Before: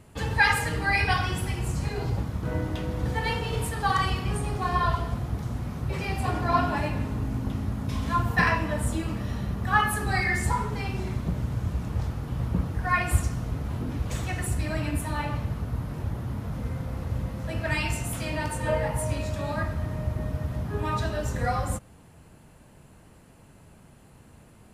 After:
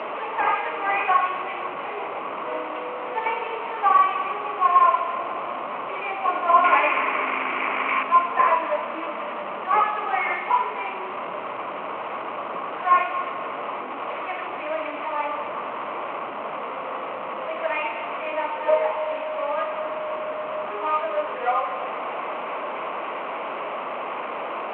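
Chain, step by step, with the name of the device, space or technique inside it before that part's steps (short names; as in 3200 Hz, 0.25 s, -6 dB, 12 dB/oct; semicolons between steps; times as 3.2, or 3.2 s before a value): digital answering machine (BPF 310–3000 Hz; delta modulation 16 kbps, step -28.5 dBFS; speaker cabinet 460–3600 Hz, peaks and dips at 610 Hz +5 dB, 1100 Hz +9 dB, 1700 Hz -9 dB, 3500 Hz -8 dB); 6.64–8.03 EQ curve 220 Hz 0 dB, 390 Hz +6 dB, 610 Hz 0 dB, 2300 Hz +14 dB, 3900 Hz +2 dB; split-band echo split 790 Hz, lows 0.348 s, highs 0.249 s, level -13.5 dB; dynamic EQ 2300 Hz, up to +4 dB, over -47 dBFS, Q 6.6; gain +4 dB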